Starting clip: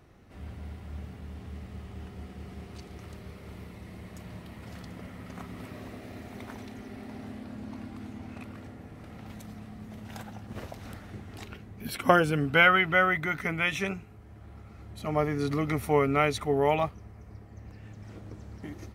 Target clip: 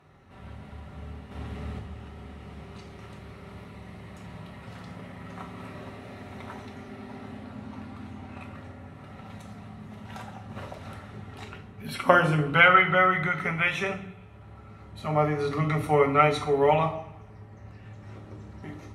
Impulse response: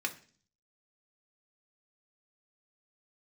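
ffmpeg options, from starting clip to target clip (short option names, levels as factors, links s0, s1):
-filter_complex "[0:a]asettb=1/sr,asplit=3[s0][s1][s2];[s0]atrim=end=1.314[s3];[s1]atrim=start=1.31:end=1.79,asetpts=PTS-STARTPTS,afade=t=in:d=0.004:c=qsin,afade=t=out:st=0.476:d=0.004:c=qsin,acontrast=57[s4];[s2]atrim=start=1.786[s5];[s3][s4]acrossfade=d=0.004:c1=hsin:c2=qsin[s6];[s6][s5]acrossfade=d=0.004:c1=qsin:c2=hsin[s7];[1:a]atrim=start_sample=2205,asetrate=22932,aresample=44100[s8];[s7][s8]afir=irnorm=-1:irlink=0,volume=0.531"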